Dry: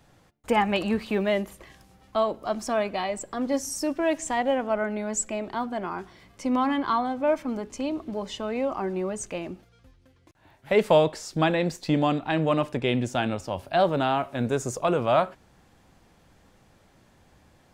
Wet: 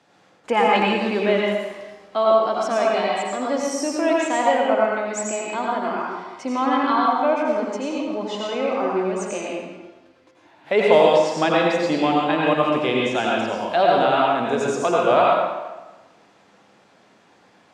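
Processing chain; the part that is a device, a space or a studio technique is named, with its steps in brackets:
supermarket ceiling speaker (band-pass filter 270–6,200 Hz; convolution reverb RT60 1.2 s, pre-delay 78 ms, DRR −3.5 dB)
level +2.5 dB

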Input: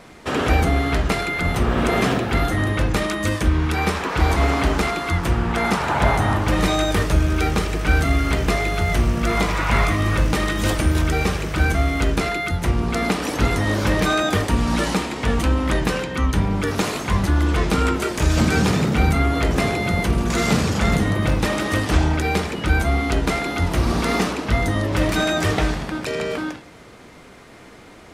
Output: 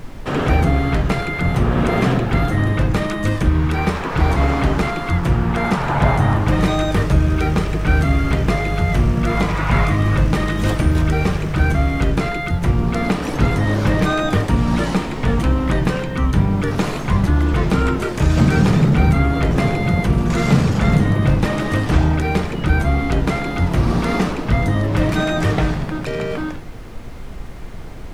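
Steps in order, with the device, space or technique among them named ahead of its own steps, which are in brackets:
car interior (parametric band 140 Hz +8.5 dB 0.74 octaves; high-shelf EQ 3,500 Hz −8 dB; brown noise bed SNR 14 dB)
level +1 dB

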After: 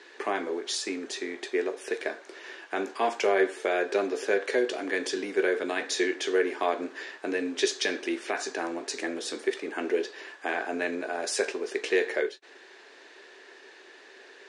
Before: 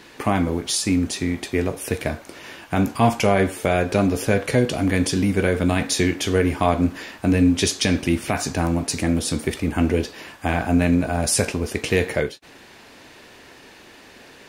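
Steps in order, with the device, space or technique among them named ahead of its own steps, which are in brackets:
phone speaker on a table (loudspeaker in its box 350–8,000 Hz, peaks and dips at 390 Hz +10 dB, 1,700 Hz +8 dB, 3,800 Hz +3 dB)
level −8 dB

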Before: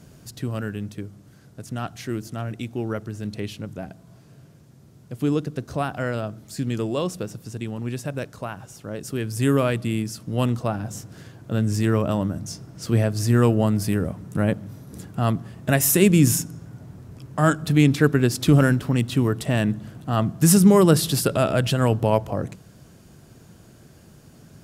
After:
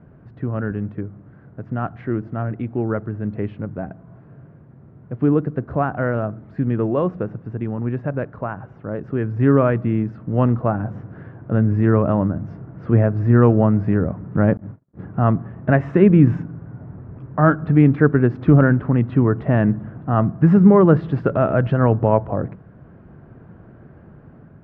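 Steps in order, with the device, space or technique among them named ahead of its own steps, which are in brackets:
0:14.57–0:14.99: noise gate −36 dBFS, range −42 dB
action camera in a waterproof case (low-pass filter 1,700 Hz 24 dB per octave; automatic gain control gain up to 4.5 dB; level +1 dB; AAC 96 kbit/s 44,100 Hz)

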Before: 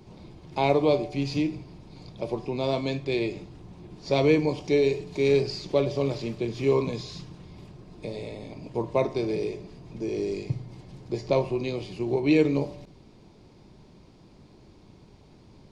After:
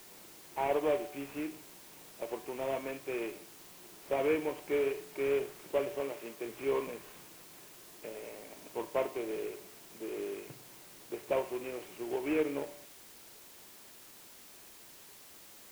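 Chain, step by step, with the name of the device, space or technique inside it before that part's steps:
army field radio (band-pass filter 400–3,200 Hz; variable-slope delta modulation 16 kbit/s; white noise bed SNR 17 dB)
0:06.00–0:06.45: low-shelf EQ 130 Hz −11 dB
level −5.5 dB

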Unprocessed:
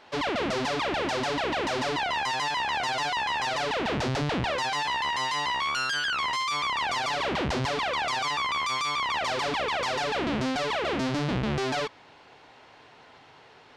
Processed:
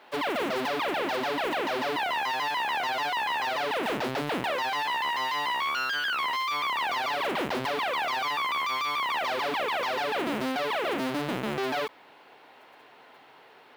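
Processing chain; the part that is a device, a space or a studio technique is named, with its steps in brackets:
early digital voice recorder (band-pass filter 240–3,800 Hz; one scale factor per block 5 bits)

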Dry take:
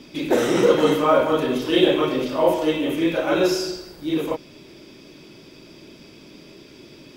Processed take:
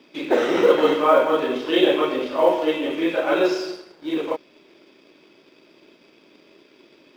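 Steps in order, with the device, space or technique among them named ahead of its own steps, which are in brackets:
phone line with mismatched companding (band-pass filter 330–3,500 Hz; mu-law and A-law mismatch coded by A)
level +2 dB

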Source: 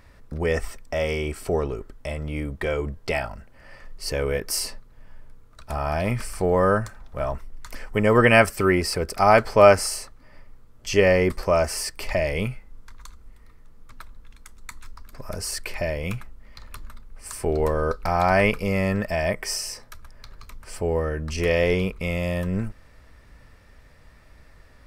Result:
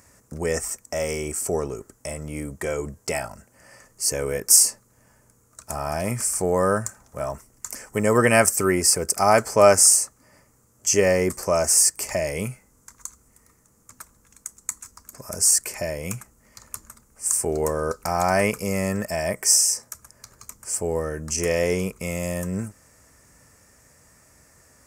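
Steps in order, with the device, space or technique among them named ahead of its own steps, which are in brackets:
budget condenser microphone (high-pass filter 100 Hz 12 dB per octave; high shelf with overshoot 5,100 Hz +11.5 dB, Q 3)
level −1 dB

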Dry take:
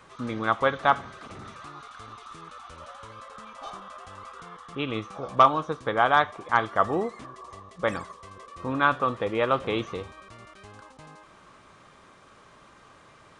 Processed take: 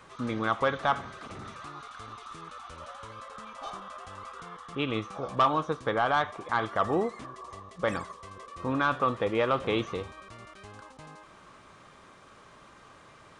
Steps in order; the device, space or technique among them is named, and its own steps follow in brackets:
soft clipper into limiter (soft clipping −10.5 dBFS, distortion −16 dB; brickwall limiter −15.5 dBFS, peak gain reduction 4.5 dB)

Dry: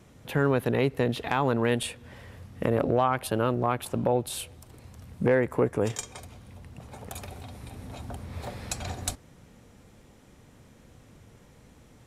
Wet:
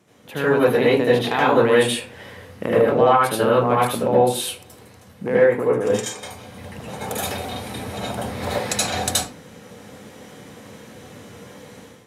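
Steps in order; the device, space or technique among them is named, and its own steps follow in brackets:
far laptop microphone (convolution reverb RT60 0.35 s, pre-delay 72 ms, DRR −7 dB; high-pass filter 170 Hz 12 dB per octave; automatic gain control)
level −3 dB

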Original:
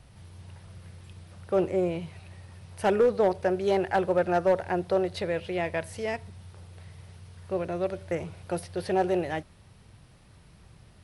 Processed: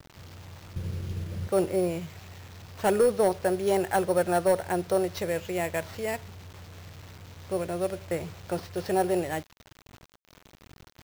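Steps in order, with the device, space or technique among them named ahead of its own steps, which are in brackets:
0:00.76–0:01.48: low shelf with overshoot 640 Hz +13 dB, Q 1.5
early 8-bit sampler (sample-rate reduction 9,800 Hz, jitter 0%; bit reduction 8 bits)

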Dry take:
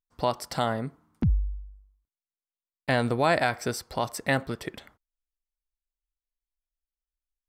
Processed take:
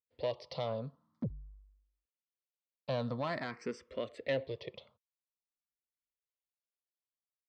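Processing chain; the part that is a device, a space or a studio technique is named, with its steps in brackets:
barber-pole phaser into a guitar amplifier (frequency shifter mixed with the dry sound +0.48 Hz; soft clipping −21.5 dBFS, distortion −14 dB; loudspeaker in its box 110–4,500 Hz, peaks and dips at 170 Hz −4 dB, 320 Hz −4 dB, 520 Hz +8 dB, 790 Hz −10 dB, 1,500 Hz −10 dB)
level −4.5 dB

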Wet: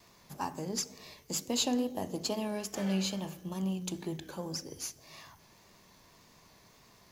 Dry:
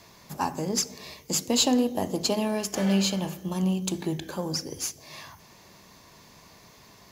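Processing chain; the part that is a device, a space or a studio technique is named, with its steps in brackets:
vinyl LP (tape wow and flutter; surface crackle 42 per second −42 dBFS; pink noise bed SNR 35 dB)
level −8 dB

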